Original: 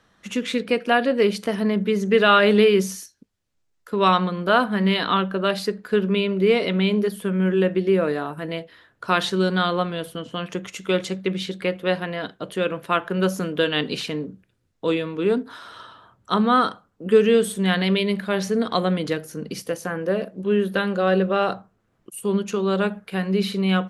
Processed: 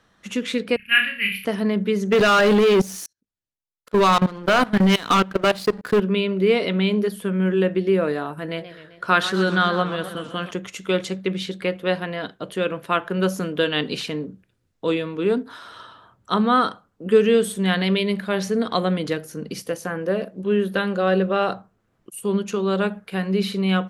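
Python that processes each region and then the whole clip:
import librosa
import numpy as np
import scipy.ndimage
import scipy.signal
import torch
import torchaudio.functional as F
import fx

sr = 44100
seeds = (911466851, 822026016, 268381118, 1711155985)

y = fx.chain(x, sr, fx.curve_eq(hz=(110.0, 210.0, 320.0, 790.0, 1700.0, 2600.0, 3900.0, 7600.0, 11000.0), db=(0, -6, -29, -29, 4, 13, -12, -26, 11)),
    fx.room_flutter(wall_m=5.3, rt60_s=0.43),
    fx.band_widen(depth_pct=70), at=(0.76, 1.45))
y = fx.chain(y, sr, fx.level_steps(step_db=22),
    fx.leveller(passes=3), at=(2.12, 6.0))
y = fx.chain(y, sr, fx.peak_eq(hz=1500.0, db=6.0, octaves=0.49),
    fx.echo_warbled(ms=130, feedback_pct=62, rate_hz=2.8, cents=162, wet_db=-13), at=(8.45, 10.51))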